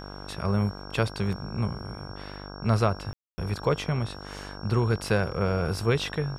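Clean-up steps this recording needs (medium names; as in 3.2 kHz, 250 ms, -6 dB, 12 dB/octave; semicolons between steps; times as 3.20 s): de-hum 49.2 Hz, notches 33; band-stop 5.5 kHz, Q 30; room tone fill 3.13–3.38 s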